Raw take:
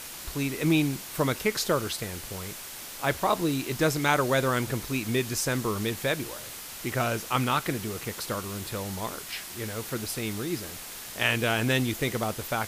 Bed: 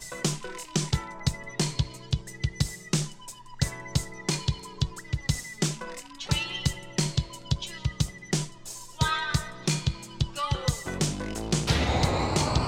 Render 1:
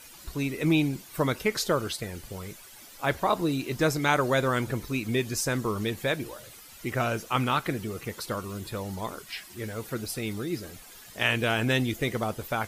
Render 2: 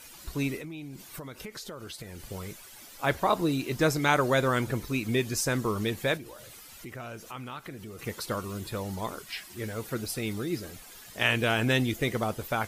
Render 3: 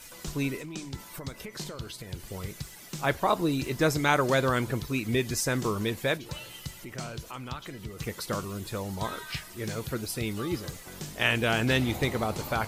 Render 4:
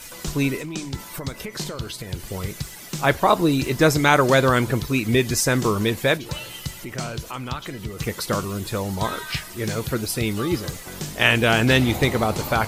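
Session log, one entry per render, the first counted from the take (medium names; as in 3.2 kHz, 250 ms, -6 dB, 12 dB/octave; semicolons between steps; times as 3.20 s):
noise reduction 12 dB, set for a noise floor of -41 dBFS
0.57–2.31 s: compression 10:1, threshold -37 dBFS; 6.17–7.99 s: compression 2.5:1, threshold -43 dBFS
add bed -13 dB
trim +8 dB; peak limiter -1 dBFS, peak gain reduction 1.5 dB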